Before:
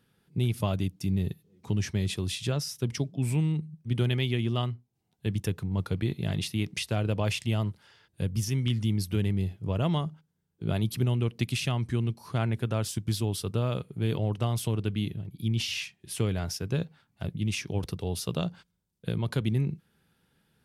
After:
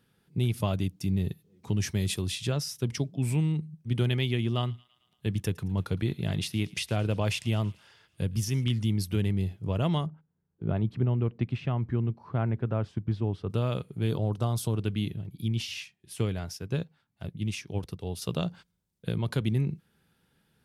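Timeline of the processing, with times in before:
0:01.80–0:02.22: high-shelf EQ 8,600 Hz +12 dB
0:04.44–0:08.64: delay with a high-pass on its return 111 ms, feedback 64%, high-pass 1,600 Hz, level −21.5 dB
0:10.06–0:13.50: low-pass filter 1,500 Hz
0:14.09–0:14.76: flat-topped bell 2,300 Hz −8.5 dB 1 octave
0:15.46–0:18.22: expander for the loud parts, over −39 dBFS

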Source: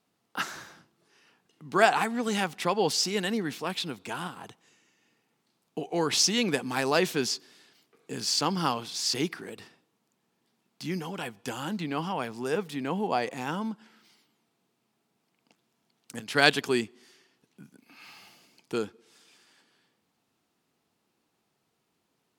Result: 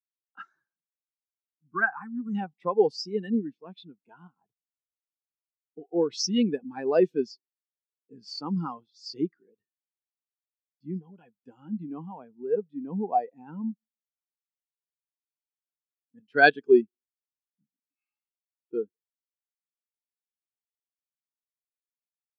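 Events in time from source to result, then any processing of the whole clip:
0:01.68–0:02.35: phaser with its sweep stopped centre 1,400 Hz, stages 4
0:08.22–0:08.89: variable-slope delta modulation 64 kbit/s
whole clip: every bin expanded away from the loudest bin 2.5 to 1

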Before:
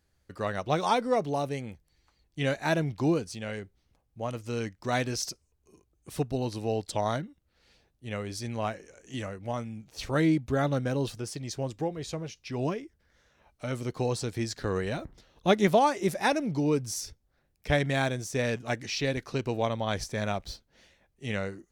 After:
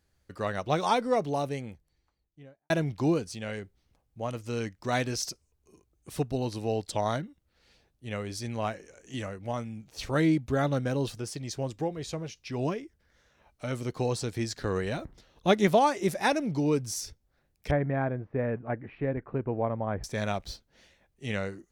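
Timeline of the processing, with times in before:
0:01.41–0:02.70: fade out and dull
0:17.71–0:20.04: Bessel low-pass filter 1,200 Hz, order 6

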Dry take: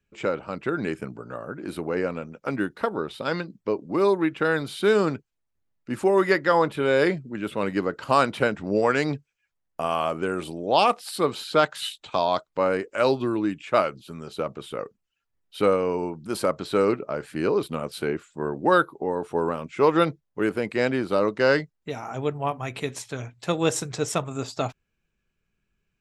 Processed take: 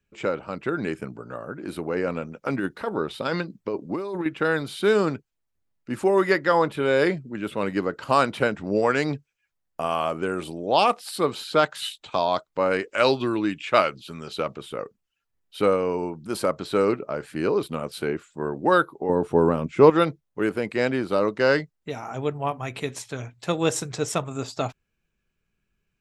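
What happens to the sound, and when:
0:02.07–0:04.26: compressor whose output falls as the input rises −26 dBFS
0:12.71–0:14.57: parametric band 3,200 Hz +7.5 dB 2.3 octaves
0:19.09–0:19.90: low-shelf EQ 490 Hz +10.5 dB

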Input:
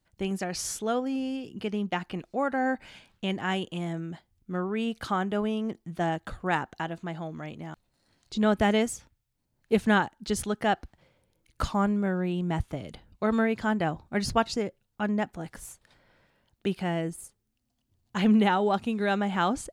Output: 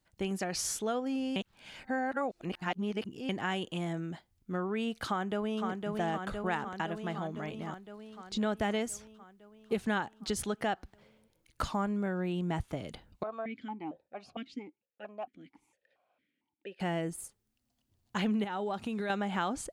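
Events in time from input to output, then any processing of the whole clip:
0:01.36–0:03.29: reverse
0:05.06–0:05.66: delay throw 510 ms, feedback 70%, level −6 dB
0:13.23–0:16.80: formant filter that steps through the vowels 4.4 Hz
0:18.44–0:19.10: downward compressor 12 to 1, threshold −28 dBFS
whole clip: low-shelf EQ 220 Hz −4 dB; downward compressor 3 to 1, threshold −30 dBFS

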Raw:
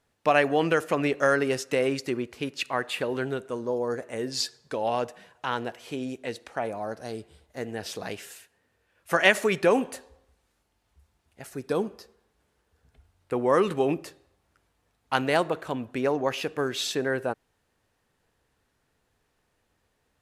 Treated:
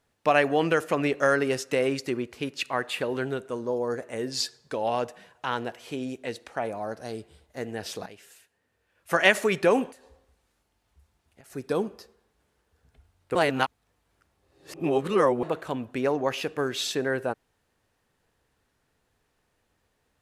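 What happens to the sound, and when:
0:08.06–0:09.17: fade in, from −14 dB
0:09.91–0:11.50: downward compressor 16 to 1, threshold −48 dBFS
0:13.35–0:15.43: reverse

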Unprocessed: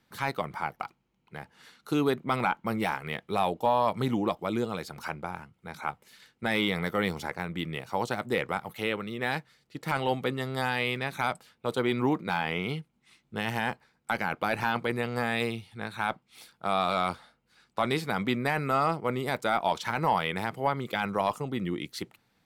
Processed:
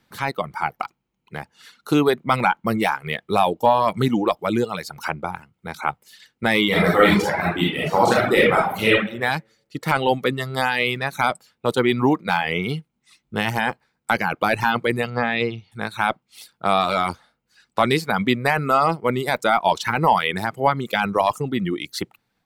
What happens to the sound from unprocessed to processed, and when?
0:06.67–0:08.93: thrown reverb, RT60 0.87 s, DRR −5.5 dB
0:15.10–0:15.72: Bessel low-pass filter 3,600 Hz, order 4
whole clip: reverb reduction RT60 1.1 s; automatic gain control gain up to 4 dB; level +5.5 dB

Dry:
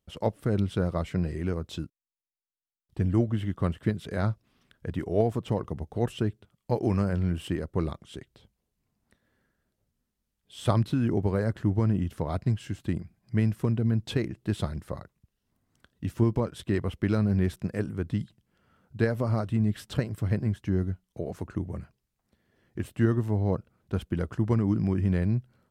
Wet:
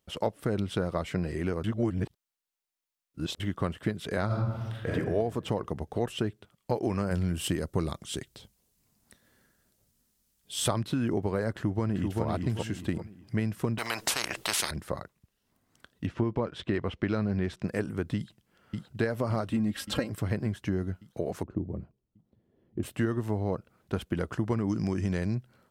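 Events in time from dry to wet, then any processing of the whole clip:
0:01.64–0:03.40: reverse
0:04.26–0:04.92: thrown reverb, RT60 1.2 s, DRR −8.5 dB
0:07.11–0:10.68: bass and treble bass +5 dB, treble +10 dB
0:11.50–0:12.23: delay throw 390 ms, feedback 30%, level −4.5 dB
0:13.78–0:14.71: every bin compressed towards the loudest bin 10 to 1
0:16.06–0:17.66: low-pass filter 2,900 Hz → 6,100 Hz
0:18.16–0:18.97: delay throw 570 ms, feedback 60%, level −4.5 dB
0:19.51–0:20.10: comb filter 3.7 ms
0:21.43–0:22.83: drawn EQ curve 350 Hz 0 dB, 1,100 Hz −13 dB, 1,600 Hz −21 dB, 3,500 Hz −17 dB, 7,700 Hz −29 dB
0:24.69–0:25.35: parametric band 6,300 Hz +15 dB 0.7 octaves
whole clip: low-shelf EQ 210 Hz −9 dB; downward compressor 3 to 1, threshold −32 dBFS; level +6 dB

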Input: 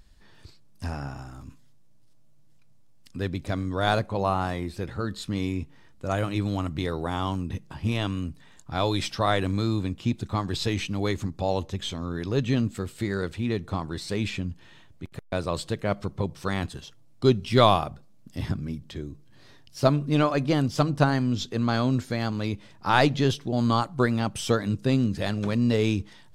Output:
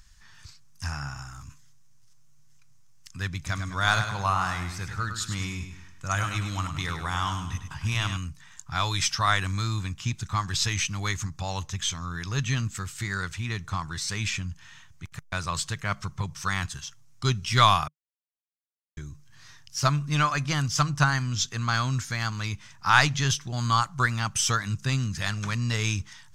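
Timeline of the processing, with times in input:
0:03.36–0:08.17: repeating echo 102 ms, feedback 43%, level −8 dB
0:17.88–0:18.97: silence
whole clip: drawn EQ curve 150 Hz 0 dB, 240 Hz −12 dB, 530 Hz −15 dB, 1,100 Hz +4 dB, 1,500 Hz +6 dB, 4,200 Hz +2 dB, 6,200 Hz +14 dB, 9,300 Hz +4 dB

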